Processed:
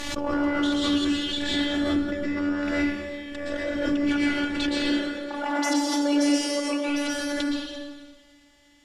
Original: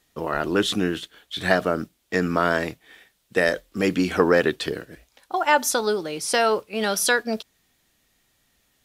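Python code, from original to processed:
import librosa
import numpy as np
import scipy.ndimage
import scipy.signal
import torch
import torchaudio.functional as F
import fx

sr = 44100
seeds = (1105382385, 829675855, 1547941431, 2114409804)

y = np.where(x < 0.0, 10.0 ** (-7.0 / 20.0) * x, x)
y = fx.highpass(y, sr, hz=150.0, slope=24, at=(4.69, 6.89))
y = fx.over_compress(y, sr, threshold_db=-33.0, ratio=-1.0)
y = fx.robotise(y, sr, hz=289.0)
y = fx.air_absorb(y, sr, metres=84.0)
y = fx.rev_plate(y, sr, seeds[0], rt60_s=1.6, hf_ratio=0.9, predelay_ms=105, drr_db=-6.0)
y = fx.pre_swell(y, sr, db_per_s=33.0)
y = y * librosa.db_to_amplitude(2.0)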